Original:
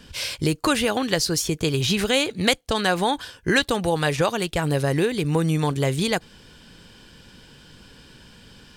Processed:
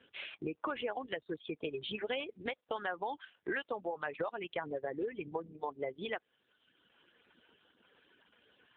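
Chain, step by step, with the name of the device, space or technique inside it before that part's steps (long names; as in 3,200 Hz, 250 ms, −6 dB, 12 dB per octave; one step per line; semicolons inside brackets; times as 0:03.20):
gate on every frequency bin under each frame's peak −20 dB strong
reverb reduction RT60 1.3 s
voicemail (band-pass filter 410–3,300 Hz; downward compressor 8 to 1, threshold −26 dBFS, peak gain reduction 10.5 dB; level −5.5 dB; AMR narrowband 5.9 kbit/s 8,000 Hz)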